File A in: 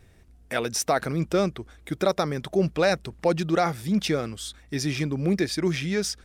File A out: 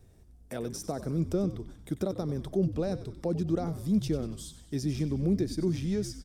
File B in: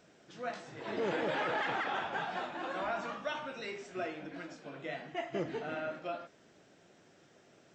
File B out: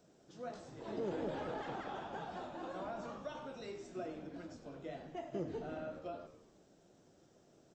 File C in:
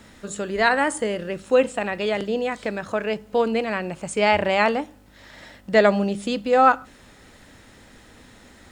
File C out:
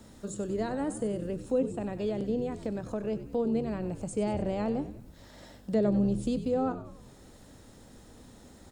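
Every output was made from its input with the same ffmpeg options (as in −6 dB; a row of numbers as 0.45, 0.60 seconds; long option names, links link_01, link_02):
-filter_complex "[0:a]equalizer=frequency=2100:width_type=o:width=1.7:gain=-12.5,acrossover=split=400[link_01][link_02];[link_02]acompressor=threshold=-41dB:ratio=2.5[link_03];[link_01][link_03]amix=inputs=2:normalize=0,asplit=7[link_04][link_05][link_06][link_07][link_08][link_09][link_10];[link_05]adelay=95,afreqshift=-78,volume=-12.5dB[link_11];[link_06]adelay=190,afreqshift=-156,volume=-17.7dB[link_12];[link_07]adelay=285,afreqshift=-234,volume=-22.9dB[link_13];[link_08]adelay=380,afreqshift=-312,volume=-28.1dB[link_14];[link_09]adelay=475,afreqshift=-390,volume=-33.3dB[link_15];[link_10]adelay=570,afreqshift=-468,volume=-38.5dB[link_16];[link_04][link_11][link_12][link_13][link_14][link_15][link_16]amix=inputs=7:normalize=0,volume=-2dB"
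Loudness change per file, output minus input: −5.5, −6.5, −9.5 LU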